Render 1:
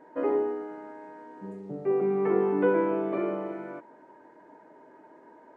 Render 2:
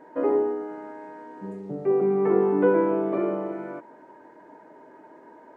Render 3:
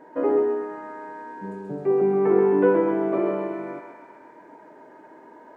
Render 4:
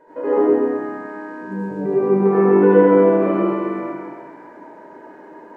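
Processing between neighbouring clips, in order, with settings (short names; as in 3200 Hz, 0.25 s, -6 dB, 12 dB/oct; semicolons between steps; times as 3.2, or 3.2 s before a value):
dynamic EQ 2700 Hz, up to -6 dB, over -50 dBFS, Q 0.82; gain +4 dB
thinning echo 0.131 s, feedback 69%, high-pass 780 Hz, level -4 dB; gain +1 dB
reverb RT60 1.4 s, pre-delay 72 ms, DRR -10 dB; gain -5 dB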